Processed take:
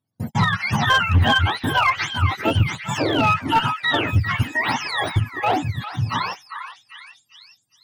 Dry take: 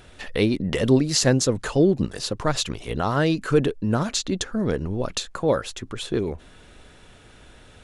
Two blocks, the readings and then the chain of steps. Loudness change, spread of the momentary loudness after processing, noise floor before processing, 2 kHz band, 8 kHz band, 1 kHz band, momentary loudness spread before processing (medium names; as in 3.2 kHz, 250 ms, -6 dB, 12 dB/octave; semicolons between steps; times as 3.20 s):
+3.0 dB, 10 LU, -50 dBFS, +12.0 dB, -9.5 dB, +11.5 dB, 9 LU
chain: spectrum inverted on a logarithmic axis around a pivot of 640 Hz; in parallel at +1 dB: compression 4:1, threshold -35 dBFS, peak gain reduction 19.5 dB; on the sum: Chebyshev shaper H 5 -29 dB, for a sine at -5.5 dBFS; gate -28 dBFS, range -42 dB; one-sided clip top -15 dBFS; on a send: repeats whose band climbs or falls 400 ms, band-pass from 1.5 kHz, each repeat 0.7 oct, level -5.5 dB; on the sum: trim +1.5 dB